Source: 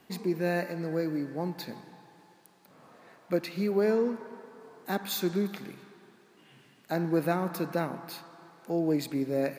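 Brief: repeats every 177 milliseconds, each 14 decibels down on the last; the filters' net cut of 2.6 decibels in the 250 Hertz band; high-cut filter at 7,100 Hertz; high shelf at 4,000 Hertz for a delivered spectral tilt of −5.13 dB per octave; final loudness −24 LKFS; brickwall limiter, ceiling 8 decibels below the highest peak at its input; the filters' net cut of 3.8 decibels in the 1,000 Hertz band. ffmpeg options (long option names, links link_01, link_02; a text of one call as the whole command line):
ffmpeg -i in.wav -af "lowpass=7100,equalizer=frequency=250:width_type=o:gain=-3.5,equalizer=frequency=1000:width_type=o:gain=-6,highshelf=frequency=4000:gain=8.5,alimiter=limit=-23.5dB:level=0:latency=1,aecho=1:1:177|354:0.2|0.0399,volume=11dB" out.wav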